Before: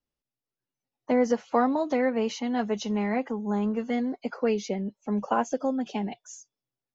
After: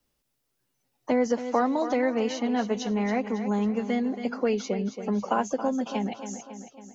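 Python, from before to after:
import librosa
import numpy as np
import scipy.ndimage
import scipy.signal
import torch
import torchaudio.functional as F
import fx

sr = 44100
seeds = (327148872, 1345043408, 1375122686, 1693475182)

p1 = fx.high_shelf(x, sr, hz=6400.0, db=4.5)
p2 = p1 + fx.echo_feedback(p1, sr, ms=275, feedback_pct=42, wet_db=-12.0, dry=0)
y = fx.band_squash(p2, sr, depth_pct=40)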